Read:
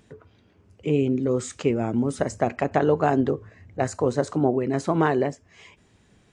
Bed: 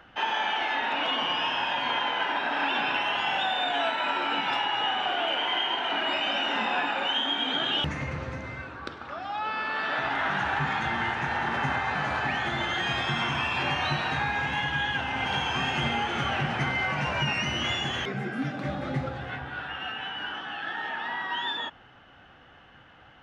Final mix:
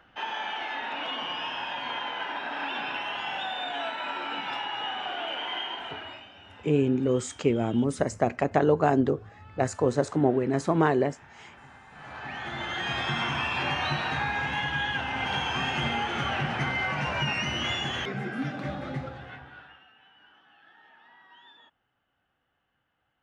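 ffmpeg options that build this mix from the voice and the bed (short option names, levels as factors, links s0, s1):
-filter_complex "[0:a]adelay=5800,volume=0.841[s0];[1:a]volume=7.08,afade=t=out:st=5.6:d=0.69:silence=0.125893,afade=t=in:st=11.91:d=1.16:silence=0.0749894,afade=t=out:st=18.53:d=1.33:silence=0.0749894[s1];[s0][s1]amix=inputs=2:normalize=0"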